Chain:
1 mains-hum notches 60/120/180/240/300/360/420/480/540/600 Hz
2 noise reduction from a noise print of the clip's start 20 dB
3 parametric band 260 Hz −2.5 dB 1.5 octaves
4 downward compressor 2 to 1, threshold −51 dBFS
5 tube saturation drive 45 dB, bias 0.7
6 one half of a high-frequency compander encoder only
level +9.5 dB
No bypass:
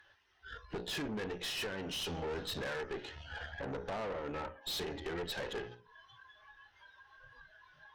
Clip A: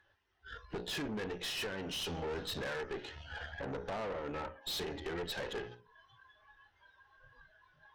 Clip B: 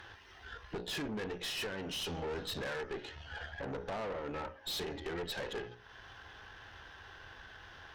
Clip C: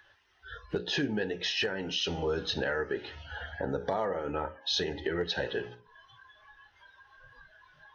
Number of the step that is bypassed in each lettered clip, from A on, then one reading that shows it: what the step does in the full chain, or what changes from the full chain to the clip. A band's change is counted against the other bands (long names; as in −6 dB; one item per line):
6, change in momentary loudness spread −12 LU
2, change in momentary loudness spread −7 LU
5, change in crest factor +5.5 dB